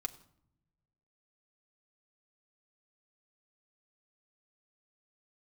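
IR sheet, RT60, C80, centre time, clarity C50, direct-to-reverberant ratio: 0.70 s, 18.5 dB, 5 ms, 17.5 dB, 4.0 dB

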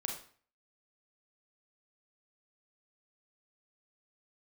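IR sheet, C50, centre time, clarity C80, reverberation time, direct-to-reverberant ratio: 5.5 dB, 27 ms, 10.5 dB, 0.45 s, 1.0 dB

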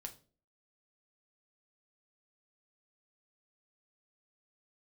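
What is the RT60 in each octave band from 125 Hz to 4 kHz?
0.50 s, 0.55 s, 0.50 s, 0.30 s, 0.30 s, 0.30 s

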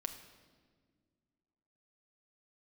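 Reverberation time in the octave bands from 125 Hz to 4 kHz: 2.4 s, 2.6 s, 2.0 s, 1.4 s, 1.3 s, 1.2 s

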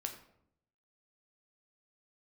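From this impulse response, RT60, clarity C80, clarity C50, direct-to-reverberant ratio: 0.75 s, 12.0 dB, 9.0 dB, 3.5 dB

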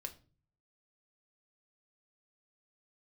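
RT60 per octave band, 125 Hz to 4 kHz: 0.80 s, 0.60 s, 0.40 s, 0.35 s, 0.30 s, 0.30 s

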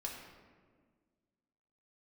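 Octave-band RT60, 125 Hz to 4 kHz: 2.0 s, 2.2 s, 1.8 s, 1.5 s, 1.3 s, 0.90 s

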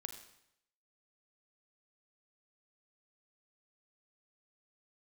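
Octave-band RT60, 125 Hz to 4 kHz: 0.80 s, 0.75 s, 0.80 s, 0.80 s, 0.75 s, 0.75 s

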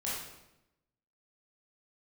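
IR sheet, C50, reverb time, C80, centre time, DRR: -0.5 dB, 0.90 s, 3.5 dB, 67 ms, -8.0 dB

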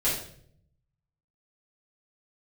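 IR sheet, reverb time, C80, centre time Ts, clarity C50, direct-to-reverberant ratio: 0.60 s, 7.5 dB, 43 ms, 3.5 dB, -11.0 dB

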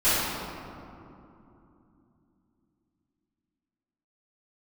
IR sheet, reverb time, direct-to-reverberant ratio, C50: 2.9 s, -17.5 dB, -4.5 dB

